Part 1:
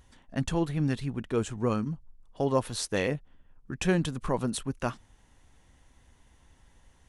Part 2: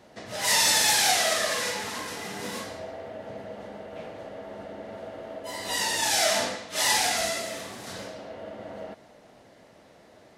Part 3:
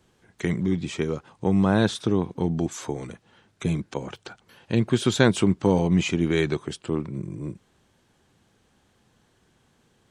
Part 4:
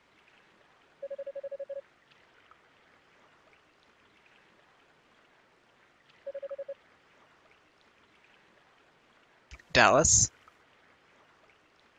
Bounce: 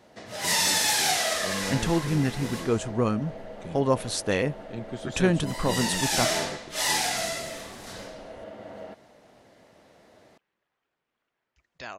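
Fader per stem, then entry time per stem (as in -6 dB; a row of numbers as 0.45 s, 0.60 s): +3.0 dB, -2.0 dB, -15.5 dB, -19.0 dB; 1.35 s, 0.00 s, 0.00 s, 2.05 s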